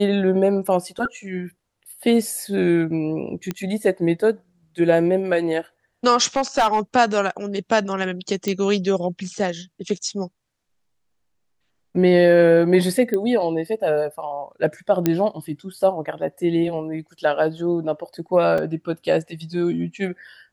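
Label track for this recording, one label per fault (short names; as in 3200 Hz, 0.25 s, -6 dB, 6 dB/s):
3.510000	3.510000	pop -12 dBFS
6.360000	6.800000	clipped -12 dBFS
8.480000	8.480000	pop -11 dBFS
13.140000	13.140000	pop -12 dBFS
15.060000	15.060000	pop -5 dBFS
18.580000	18.580000	gap 3.2 ms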